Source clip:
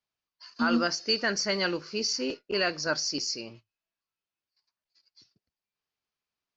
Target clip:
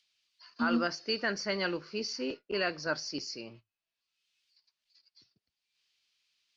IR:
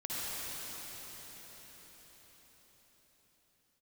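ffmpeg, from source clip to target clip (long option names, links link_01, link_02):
-filter_complex "[0:a]lowpass=4100,acrossover=split=110|2700[link_01][link_02][link_03];[link_03]acompressor=mode=upward:threshold=-52dB:ratio=2.5[link_04];[link_01][link_02][link_04]amix=inputs=3:normalize=0,volume=-3.5dB"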